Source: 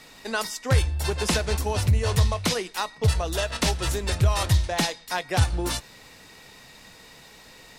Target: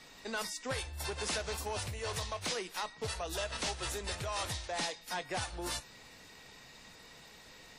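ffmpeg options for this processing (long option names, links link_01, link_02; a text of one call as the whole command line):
ffmpeg -i in.wav -filter_complex "[0:a]acrossover=split=410|2200[link_01][link_02][link_03];[link_01]acompressor=threshold=-34dB:ratio=6[link_04];[link_04][link_02][link_03]amix=inputs=3:normalize=0,asoftclip=type=tanh:threshold=-24dB,volume=-6.5dB" -ar 44100 -c:a wmav2 -b:a 32k out.wma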